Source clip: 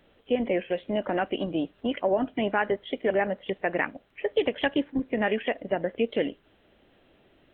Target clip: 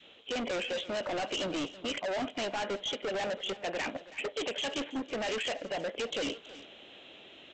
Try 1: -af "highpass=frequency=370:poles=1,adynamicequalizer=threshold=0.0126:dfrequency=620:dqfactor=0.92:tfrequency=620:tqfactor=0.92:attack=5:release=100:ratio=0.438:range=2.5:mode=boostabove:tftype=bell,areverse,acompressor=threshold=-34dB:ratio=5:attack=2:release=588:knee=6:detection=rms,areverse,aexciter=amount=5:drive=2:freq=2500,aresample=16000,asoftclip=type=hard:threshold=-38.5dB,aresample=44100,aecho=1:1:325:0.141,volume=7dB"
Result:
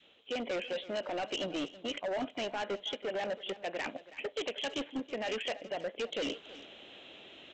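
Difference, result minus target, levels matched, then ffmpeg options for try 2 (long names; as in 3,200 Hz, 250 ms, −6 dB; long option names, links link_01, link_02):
downward compressor: peak gain reduction +7.5 dB
-af "highpass=frequency=370:poles=1,adynamicequalizer=threshold=0.0126:dfrequency=620:dqfactor=0.92:tfrequency=620:tqfactor=0.92:attack=5:release=100:ratio=0.438:range=2.5:mode=boostabove:tftype=bell,areverse,acompressor=threshold=-24.5dB:ratio=5:attack=2:release=588:knee=6:detection=rms,areverse,aexciter=amount=5:drive=2:freq=2500,aresample=16000,asoftclip=type=hard:threshold=-38.5dB,aresample=44100,aecho=1:1:325:0.141,volume=7dB"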